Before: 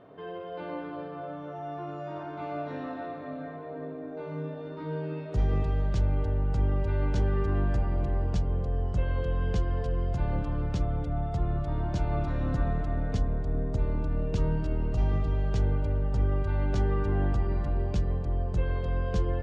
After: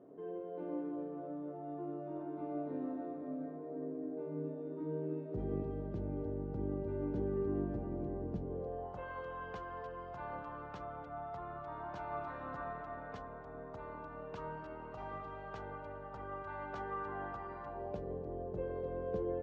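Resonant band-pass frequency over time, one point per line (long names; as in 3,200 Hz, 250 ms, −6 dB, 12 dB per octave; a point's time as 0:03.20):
resonant band-pass, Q 1.7
0:08.42 320 Hz
0:09.09 1,100 Hz
0:17.63 1,100 Hz
0:18.12 440 Hz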